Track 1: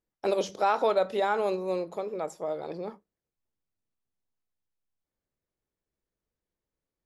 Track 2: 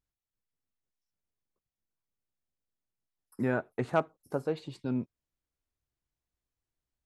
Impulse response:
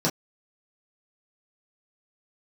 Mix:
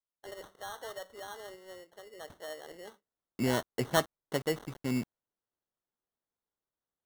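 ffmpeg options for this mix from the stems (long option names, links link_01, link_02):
-filter_complex "[0:a]bass=frequency=250:gain=-14,treble=frequency=4000:gain=7,asoftclip=type=hard:threshold=-17dB,volume=-9.5dB,afade=type=in:start_time=1.96:duration=0.53:silence=0.398107[link_01];[1:a]acrusher=bits=7:mix=0:aa=0.000001,volume=0dB[link_02];[link_01][link_02]amix=inputs=2:normalize=0,acrusher=samples=18:mix=1:aa=0.000001"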